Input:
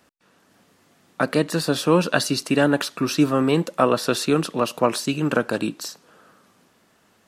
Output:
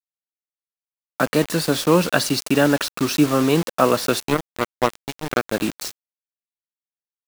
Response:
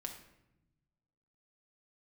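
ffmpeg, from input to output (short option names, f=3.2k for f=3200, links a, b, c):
-filter_complex "[0:a]asplit=3[a][b][c];[a]afade=t=out:st=4.19:d=0.02[d];[b]aeval=exprs='0.596*(cos(1*acos(clip(val(0)/0.596,-1,1)))-cos(1*PI/2))+0.0531*(cos(3*acos(clip(val(0)/0.596,-1,1)))-cos(3*PI/2))+0.00596*(cos(4*acos(clip(val(0)/0.596,-1,1)))-cos(4*PI/2))+0.0841*(cos(7*acos(clip(val(0)/0.596,-1,1)))-cos(7*PI/2))':c=same,afade=t=in:st=4.19:d=0.02,afade=t=out:st=5.51:d=0.02[e];[c]afade=t=in:st=5.51:d=0.02[f];[d][e][f]amix=inputs=3:normalize=0,acrusher=bits=4:mix=0:aa=0.000001,volume=1.5dB"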